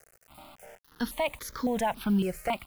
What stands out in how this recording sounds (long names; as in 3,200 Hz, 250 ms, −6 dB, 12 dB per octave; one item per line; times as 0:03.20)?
a quantiser's noise floor 8 bits, dither none
notches that jump at a steady rate 3.6 Hz 960–2,700 Hz